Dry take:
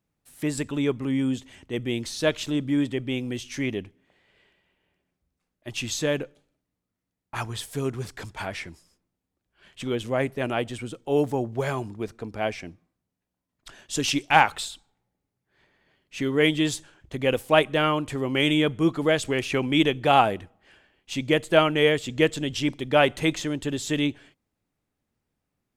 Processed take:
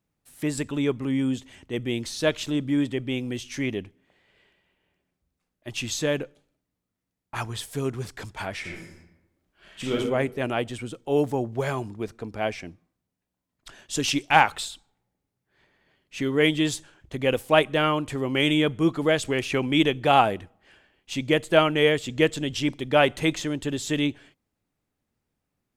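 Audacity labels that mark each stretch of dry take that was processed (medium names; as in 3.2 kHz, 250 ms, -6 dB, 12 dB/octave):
8.600000	9.940000	reverb throw, RT60 0.96 s, DRR -4 dB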